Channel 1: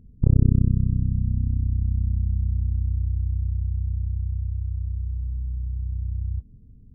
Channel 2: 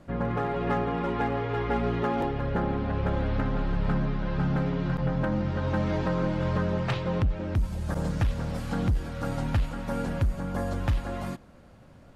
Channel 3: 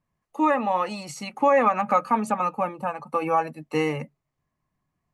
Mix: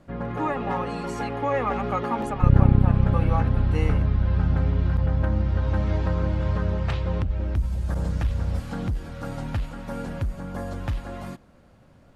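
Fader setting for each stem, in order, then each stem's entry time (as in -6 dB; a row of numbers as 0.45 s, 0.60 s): +1.0 dB, -2.0 dB, -7.0 dB; 2.20 s, 0.00 s, 0.00 s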